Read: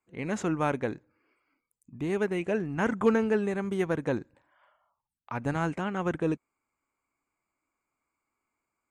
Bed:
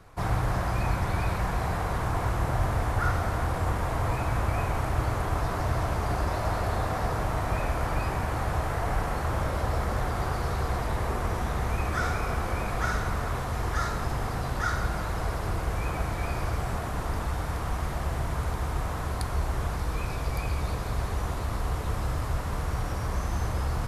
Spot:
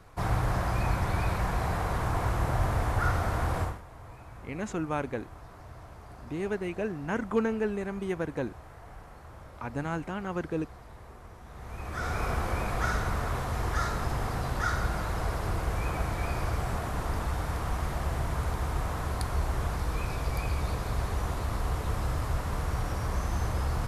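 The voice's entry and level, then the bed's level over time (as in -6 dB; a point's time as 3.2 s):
4.30 s, -3.5 dB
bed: 3.62 s -1 dB
3.83 s -19.5 dB
11.42 s -19.5 dB
12.22 s -1 dB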